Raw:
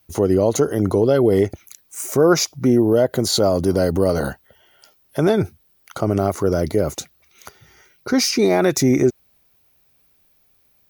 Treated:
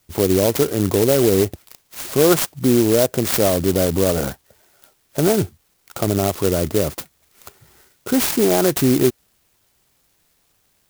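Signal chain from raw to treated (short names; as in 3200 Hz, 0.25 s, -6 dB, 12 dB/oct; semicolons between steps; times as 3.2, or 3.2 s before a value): clock jitter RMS 0.11 ms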